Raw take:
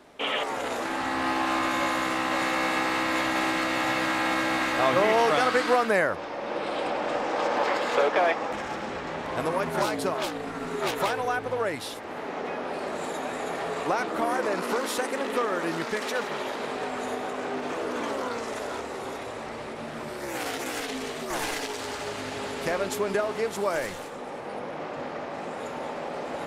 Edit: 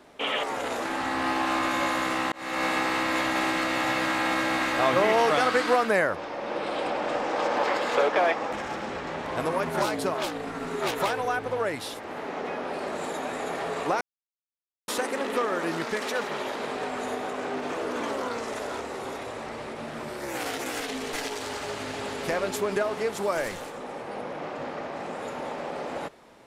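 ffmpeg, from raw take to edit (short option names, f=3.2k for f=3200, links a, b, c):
-filter_complex "[0:a]asplit=5[a][b][c][d][e];[a]atrim=end=2.32,asetpts=PTS-STARTPTS,afade=t=out:st=2.316:d=0.004:c=hsin[f];[b]atrim=start=2.32:end=14.01,asetpts=PTS-STARTPTS,afade=t=in:d=0.32,afade=t=out:st=11.686:d=0.004:c=hsin[g];[c]atrim=start=14.01:end=14.88,asetpts=PTS-STARTPTS,volume=0[h];[d]atrim=start=14.88:end=21.132,asetpts=PTS-STARTPTS,afade=t=in:d=0.004:c=hsin[i];[e]atrim=start=21.508[j];[f][g][h][i]concat=n=4:v=0:a=1[k];[k][j]acrossfade=d=0.004:c1=hsin:c2=hsin"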